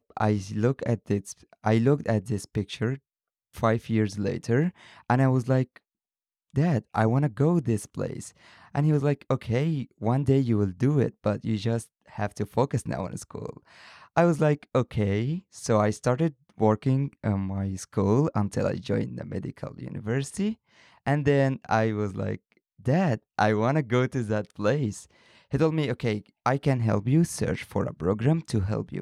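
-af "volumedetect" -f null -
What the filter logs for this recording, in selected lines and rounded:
mean_volume: -26.2 dB
max_volume: -9.3 dB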